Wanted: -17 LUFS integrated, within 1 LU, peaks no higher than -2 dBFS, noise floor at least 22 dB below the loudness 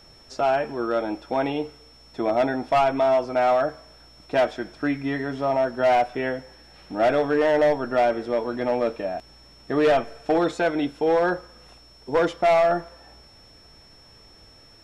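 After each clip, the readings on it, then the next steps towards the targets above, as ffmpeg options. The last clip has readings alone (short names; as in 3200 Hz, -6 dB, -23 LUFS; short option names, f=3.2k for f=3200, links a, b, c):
steady tone 5400 Hz; tone level -51 dBFS; loudness -23.0 LUFS; peak -14.5 dBFS; loudness target -17.0 LUFS
-> -af "bandreject=f=5.4k:w=30"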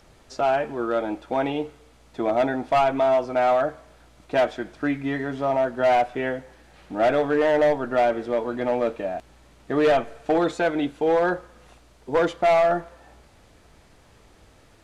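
steady tone none; loudness -23.0 LUFS; peak -14.5 dBFS; loudness target -17.0 LUFS
-> -af "volume=6dB"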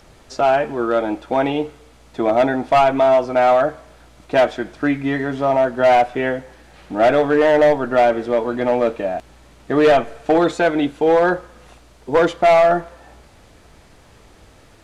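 loudness -17.0 LUFS; peak -8.5 dBFS; noise floor -48 dBFS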